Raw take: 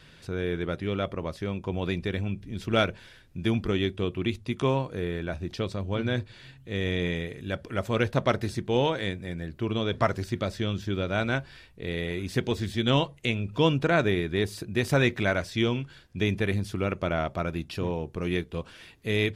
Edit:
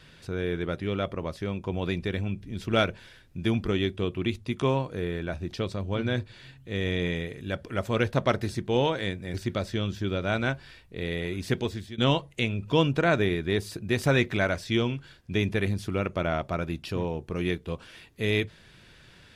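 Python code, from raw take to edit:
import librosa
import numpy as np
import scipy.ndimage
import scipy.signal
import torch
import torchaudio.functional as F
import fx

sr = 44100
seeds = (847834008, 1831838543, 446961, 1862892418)

y = fx.edit(x, sr, fx.cut(start_s=9.34, length_s=0.86),
    fx.fade_out_to(start_s=12.42, length_s=0.42, floor_db=-17.0), tone=tone)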